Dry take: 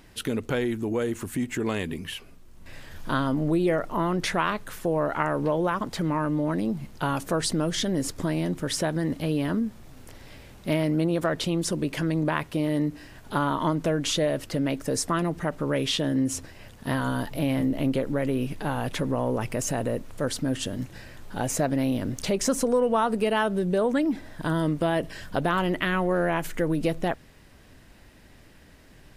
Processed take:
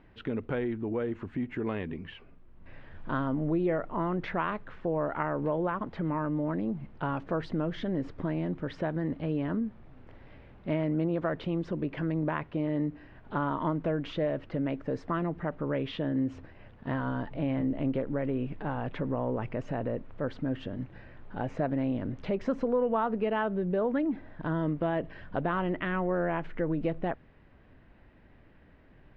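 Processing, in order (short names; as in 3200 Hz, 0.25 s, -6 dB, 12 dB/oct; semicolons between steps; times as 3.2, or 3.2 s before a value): Bessel low-pass 1900 Hz, order 4; gain -4.5 dB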